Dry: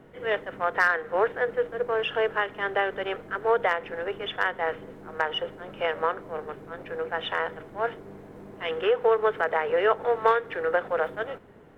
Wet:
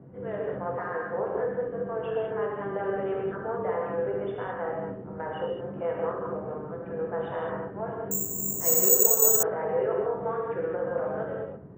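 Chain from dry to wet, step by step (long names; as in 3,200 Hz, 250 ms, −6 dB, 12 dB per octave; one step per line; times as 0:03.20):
high-pass filter 46 Hz
in parallel at +2 dB: compressor whose output falls as the input rises −28 dBFS, ratio −1
on the sum: low-pass filter 1,000 Hz 12 dB per octave
parametric band 140 Hz +13 dB 1.9 octaves
hum removal 58.5 Hz, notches 33
pitch vibrato 9.4 Hz 13 cents
reverb whose tail is shaped and stops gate 240 ms flat, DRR −3 dB
0:08.11–0:09.43: bad sample-rate conversion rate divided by 6×, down filtered, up zero stuff
level −13.5 dB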